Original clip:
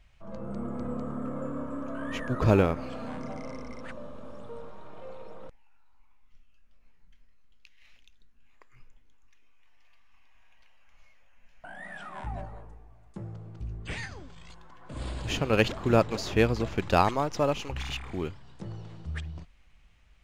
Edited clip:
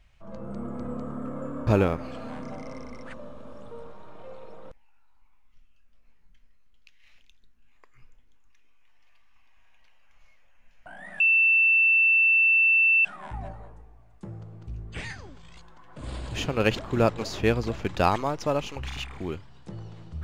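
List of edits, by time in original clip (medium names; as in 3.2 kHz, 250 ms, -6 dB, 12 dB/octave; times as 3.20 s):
1.67–2.45 s: delete
11.98 s: add tone 2.67 kHz -16.5 dBFS 1.85 s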